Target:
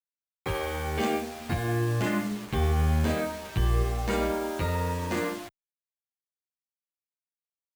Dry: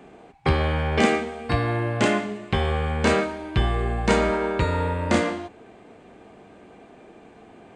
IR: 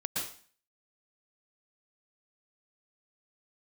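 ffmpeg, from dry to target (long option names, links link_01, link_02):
-filter_complex "[0:a]asettb=1/sr,asplit=3[link_01][link_02][link_03];[link_01]atrim=end=1.494[link_04];[link_02]atrim=start=1.49:end=3.83,asetpts=PTS-STARTPTS,afade=type=in:duration=0.004:curve=qsin,afade=type=out:start_time=2.336:duration=0.004:curve=qsin,lowshelf=frequency=390:gain=6.5[link_05];[link_03]atrim=start=3.826[link_06];[link_04][link_05]acrossfade=duration=0.004:curve1=hsin:curve2=qsin[link_07];[link_07][link_06]acrossfade=duration=0.004:curve1=qsin:curve2=hsin,alimiter=limit=-12.5dB:level=0:latency=1:release=22,acrusher=bits=5:mix=0:aa=0.000001,asplit=2[link_08][link_09];[link_09]adelay=9.3,afreqshift=0.64[link_10];[link_08][link_10]amix=inputs=2:normalize=1,volume=-3dB"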